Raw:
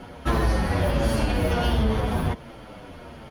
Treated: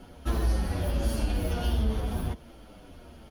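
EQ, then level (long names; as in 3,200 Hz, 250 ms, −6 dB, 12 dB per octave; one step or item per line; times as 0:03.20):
graphic EQ with 10 bands 125 Hz −11 dB, 250 Hz −3 dB, 500 Hz −7 dB, 1,000 Hz −9 dB, 2,000 Hz −10 dB, 4,000 Hz −4 dB, 8,000 Hz −3 dB
0.0 dB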